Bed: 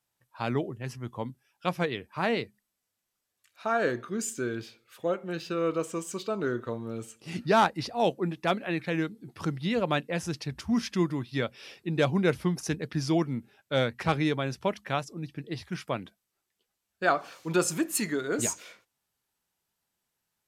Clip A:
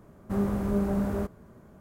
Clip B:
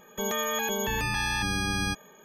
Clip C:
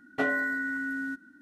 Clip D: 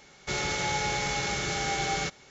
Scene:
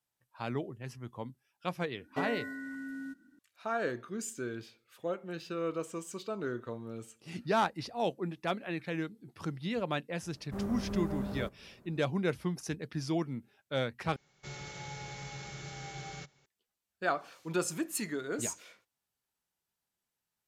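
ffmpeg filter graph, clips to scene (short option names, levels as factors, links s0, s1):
-filter_complex "[0:a]volume=0.473[s0];[3:a]equalizer=f=1500:t=o:w=0.59:g=-9.5[s1];[4:a]equalizer=f=140:t=o:w=0.34:g=12[s2];[s0]asplit=2[s3][s4];[s3]atrim=end=14.164[s5];[s2]atrim=end=2.3,asetpts=PTS-STARTPTS,volume=0.158[s6];[s4]atrim=start=16.456[s7];[s1]atrim=end=1.41,asetpts=PTS-STARTPTS,volume=0.531,afade=t=in:d=0.004:c=hsin,afade=t=out:st=1.406:d=0.004:c=hsin,adelay=1980[s8];[1:a]atrim=end=1.8,asetpts=PTS-STARTPTS,volume=0.355,afade=t=in:d=0.004:c=hsin,afade=t=out:st=1.796:d=0.004:c=hsin,adelay=10220[s9];[s5][s6]acrossfade=d=0.004:c1=hsin:c2=hsin[s10];[s10][s7]acrossfade=d=0.004:c1=hsin:c2=hsin[s11];[s11][s8][s9]amix=inputs=3:normalize=0"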